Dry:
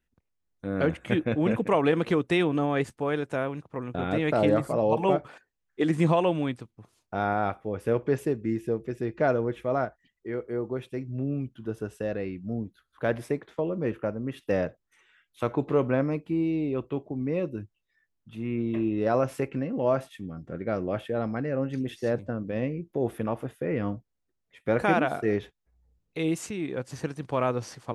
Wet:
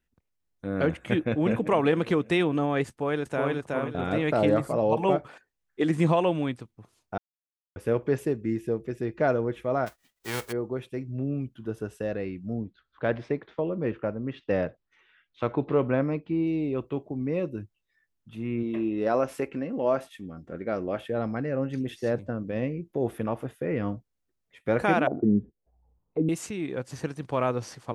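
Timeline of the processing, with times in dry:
1.23–1.66 echo throw 0.25 s, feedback 50%, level -15.5 dB
2.88–3.5 echo throw 0.37 s, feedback 30%, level -1.5 dB
7.18–7.76 mute
9.86–10.51 spectral whitening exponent 0.3
12.61–16.47 LPF 4700 Hz 24 dB/oct
18.63–20.99 bell 120 Hz -10 dB
25.07–26.29 envelope low-pass 220–1000 Hz down, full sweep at -26 dBFS

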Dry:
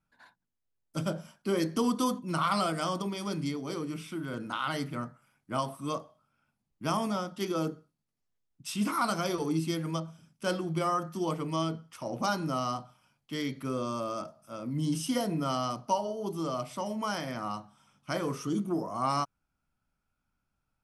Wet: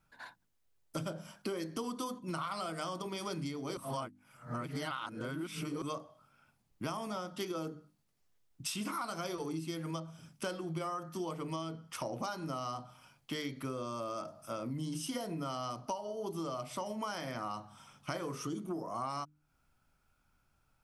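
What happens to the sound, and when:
3.77–5.82 reverse
whole clip: bell 210 Hz -4 dB 0.68 oct; notches 50/100/150/200/250/300 Hz; compressor 8:1, threshold -44 dBFS; gain +8 dB

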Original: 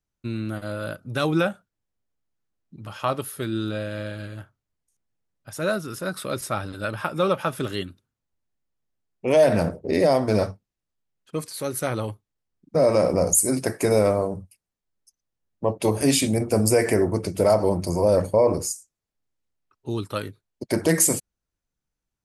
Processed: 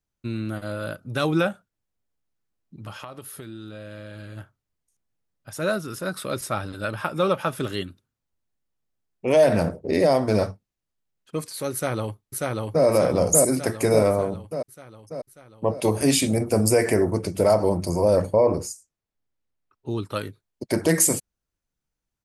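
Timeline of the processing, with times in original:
2.9–4.37 compressor 10:1, threshold -34 dBFS
11.73–12.85 echo throw 0.59 s, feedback 60%, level -1 dB
18.25–20.12 high shelf 5000 Hz -8.5 dB

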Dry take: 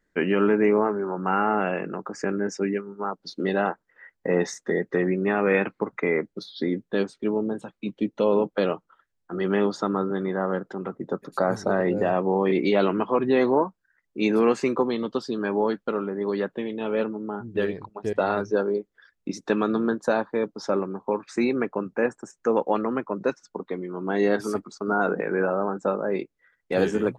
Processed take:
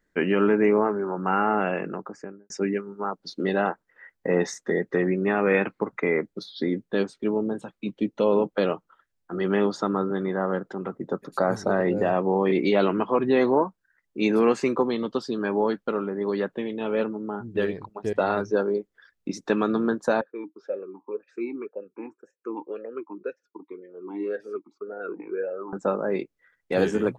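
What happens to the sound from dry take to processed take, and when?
1.85–2.5 studio fade out
20.21–25.73 vowel sweep e-u 1.9 Hz

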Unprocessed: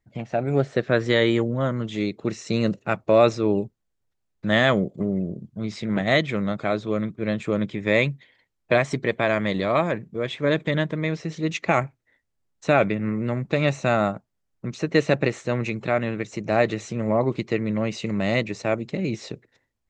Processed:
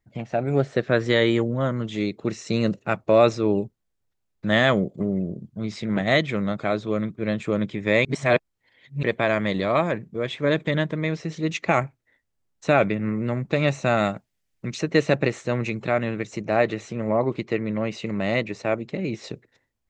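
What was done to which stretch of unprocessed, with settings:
8.05–9.03 reverse
13.97–14.81 resonant high shelf 1600 Hz +6 dB, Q 1.5
16.43–19.24 tone controls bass -3 dB, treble -6 dB

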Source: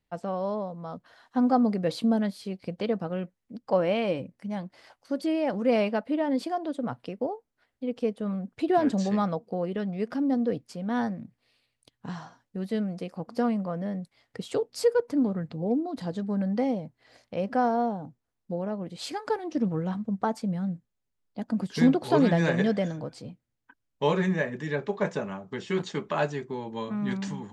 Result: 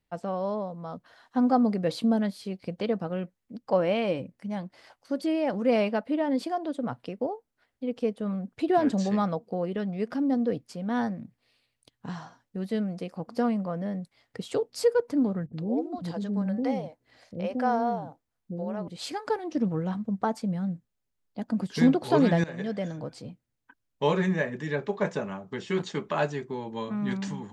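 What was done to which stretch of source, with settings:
15.46–18.88 bands offset in time lows, highs 70 ms, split 410 Hz
22.44–23.09 fade in, from -18.5 dB

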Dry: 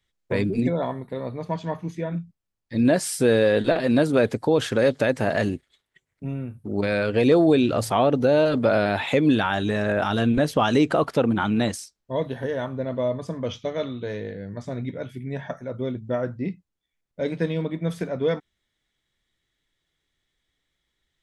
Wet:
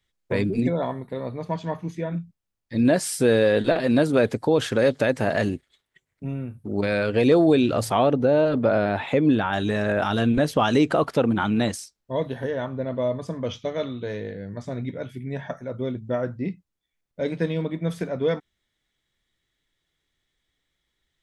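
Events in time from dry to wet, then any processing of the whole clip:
8.13–9.53 high shelf 2800 Hz -11.5 dB
12.49–13.02 air absorption 66 m

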